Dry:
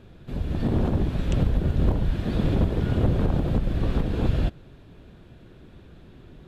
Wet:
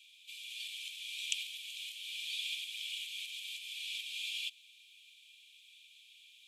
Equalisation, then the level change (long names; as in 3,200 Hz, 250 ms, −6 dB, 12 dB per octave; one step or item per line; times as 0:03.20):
Chebyshev high-pass with heavy ripple 2,300 Hz, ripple 6 dB
+10.0 dB